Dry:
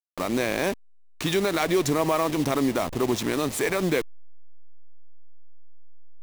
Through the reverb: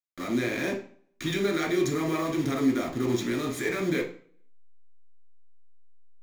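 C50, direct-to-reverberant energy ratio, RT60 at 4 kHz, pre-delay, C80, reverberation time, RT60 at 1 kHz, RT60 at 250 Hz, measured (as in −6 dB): 9.0 dB, −0.5 dB, 0.40 s, 3 ms, 13.5 dB, 0.45 s, 0.50 s, 0.50 s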